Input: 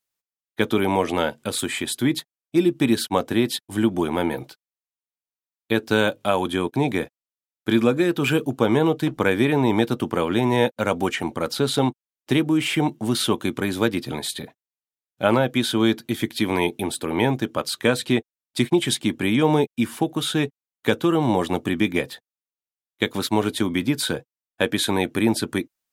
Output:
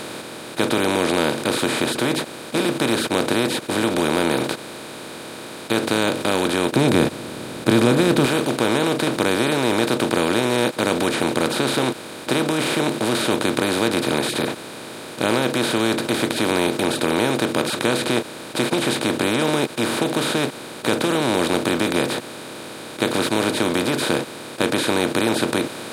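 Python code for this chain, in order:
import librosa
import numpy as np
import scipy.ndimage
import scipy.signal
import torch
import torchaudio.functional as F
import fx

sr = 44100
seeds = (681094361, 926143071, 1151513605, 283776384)

y = fx.bin_compress(x, sr, power=0.2)
y = fx.low_shelf(y, sr, hz=280.0, db=10.5, at=(6.75, 8.26))
y = y * librosa.db_to_amplitude(-8.5)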